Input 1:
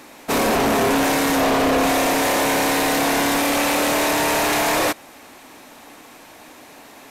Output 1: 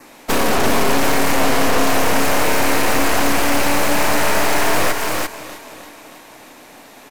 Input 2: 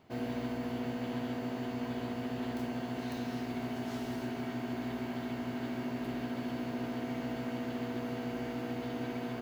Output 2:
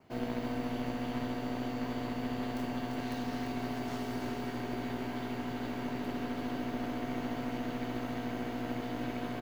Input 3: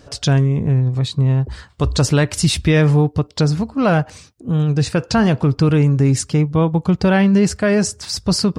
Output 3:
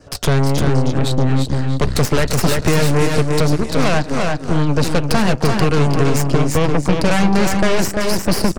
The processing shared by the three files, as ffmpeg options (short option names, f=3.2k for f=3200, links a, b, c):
-filter_complex "[0:a]asplit=2[a][b];[b]aecho=0:1:314|628|942|1256|1570|1884:0.2|0.112|0.0626|0.035|0.0196|0.011[c];[a][c]amix=inputs=2:normalize=0,aeval=exprs='0.668*(cos(1*acos(clip(val(0)/0.668,-1,1)))-cos(1*PI/2))+0.188*(cos(8*acos(clip(val(0)/0.668,-1,1)))-cos(8*PI/2))':c=same,asplit=2[d][e];[e]aecho=0:1:343:0.501[f];[d][f]amix=inputs=2:normalize=0,adynamicequalizer=threshold=0.0112:dfrequency=3500:dqfactor=4.1:tfrequency=3500:tqfactor=4.1:attack=5:release=100:ratio=0.375:range=2:mode=cutabove:tftype=bell,acrossover=split=180|2400[g][h][i];[g]acompressor=threshold=-14dB:ratio=4[j];[h]acompressor=threshold=-15dB:ratio=4[k];[i]acompressor=threshold=-23dB:ratio=4[l];[j][k][l]amix=inputs=3:normalize=0"